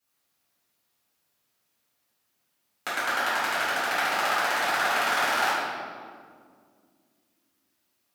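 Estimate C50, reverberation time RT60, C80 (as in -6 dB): -3.0 dB, 2.1 s, 0.0 dB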